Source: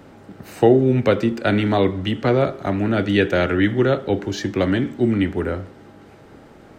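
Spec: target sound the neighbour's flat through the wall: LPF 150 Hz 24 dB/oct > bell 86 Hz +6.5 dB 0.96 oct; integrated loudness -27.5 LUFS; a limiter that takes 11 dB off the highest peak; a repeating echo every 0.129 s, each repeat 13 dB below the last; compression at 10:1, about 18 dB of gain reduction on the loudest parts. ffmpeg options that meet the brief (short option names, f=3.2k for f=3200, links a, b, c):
-af "acompressor=threshold=-27dB:ratio=10,alimiter=limit=-24dB:level=0:latency=1,lowpass=f=150:w=0.5412,lowpass=f=150:w=1.3066,equalizer=f=86:t=o:w=0.96:g=6.5,aecho=1:1:129|258|387:0.224|0.0493|0.0108,volume=11dB"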